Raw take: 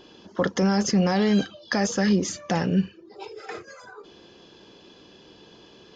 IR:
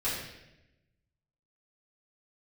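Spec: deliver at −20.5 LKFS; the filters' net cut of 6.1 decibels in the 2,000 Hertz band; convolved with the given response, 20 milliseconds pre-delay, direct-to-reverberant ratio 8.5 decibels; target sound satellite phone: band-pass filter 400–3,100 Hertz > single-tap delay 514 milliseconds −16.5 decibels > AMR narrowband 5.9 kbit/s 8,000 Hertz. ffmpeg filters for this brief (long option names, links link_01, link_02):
-filter_complex "[0:a]equalizer=frequency=2000:width_type=o:gain=-7,asplit=2[link_01][link_02];[1:a]atrim=start_sample=2205,adelay=20[link_03];[link_02][link_03]afir=irnorm=-1:irlink=0,volume=-16dB[link_04];[link_01][link_04]amix=inputs=2:normalize=0,highpass=400,lowpass=3100,aecho=1:1:514:0.15,volume=11.5dB" -ar 8000 -c:a libopencore_amrnb -b:a 5900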